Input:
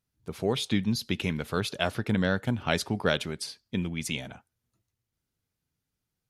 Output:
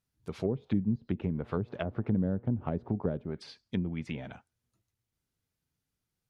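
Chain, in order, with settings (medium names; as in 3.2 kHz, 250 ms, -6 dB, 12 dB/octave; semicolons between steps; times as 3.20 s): 1.32–2.93 s: mains buzz 120 Hz, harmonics 30, -55 dBFS -4 dB/octave; low-pass that closes with the level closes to 400 Hz, closed at -24.5 dBFS; trim -1.5 dB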